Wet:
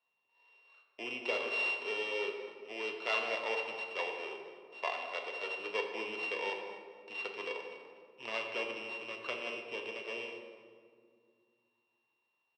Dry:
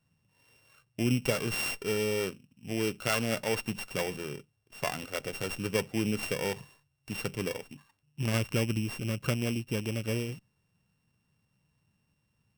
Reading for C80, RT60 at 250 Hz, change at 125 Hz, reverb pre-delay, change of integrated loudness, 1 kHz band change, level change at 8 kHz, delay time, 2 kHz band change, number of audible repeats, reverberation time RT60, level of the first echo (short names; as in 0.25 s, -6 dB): 5.5 dB, 3.1 s, under -35 dB, 3 ms, -5.0 dB, -0.5 dB, -20.5 dB, 0.246 s, 0.0 dB, 1, 2.1 s, -17.5 dB